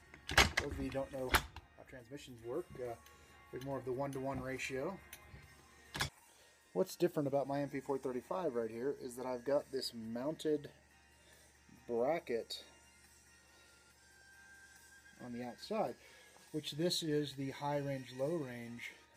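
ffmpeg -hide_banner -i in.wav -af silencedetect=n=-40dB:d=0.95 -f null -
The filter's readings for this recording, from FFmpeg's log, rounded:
silence_start: 10.66
silence_end: 11.89 | silence_duration: 1.24
silence_start: 12.55
silence_end: 15.23 | silence_duration: 2.68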